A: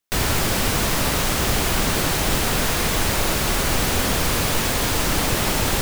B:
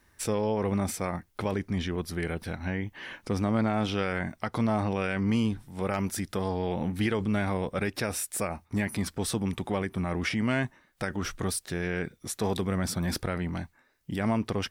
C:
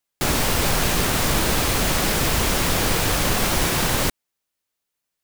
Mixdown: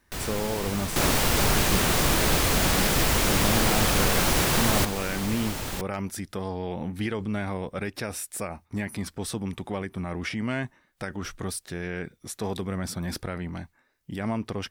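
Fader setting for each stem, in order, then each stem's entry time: -12.0 dB, -2.0 dB, -2.5 dB; 0.00 s, 0.00 s, 0.75 s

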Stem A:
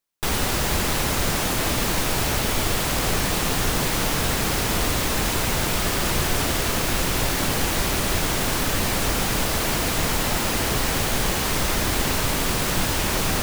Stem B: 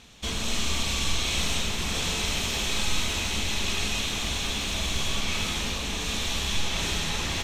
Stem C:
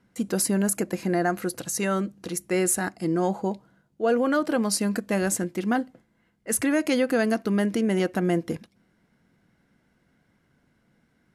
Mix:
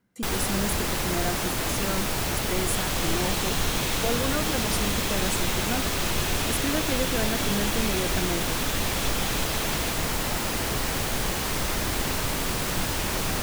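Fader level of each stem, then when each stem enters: -4.5 dB, -6.0 dB, -7.0 dB; 0.00 s, 2.50 s, 0.00 s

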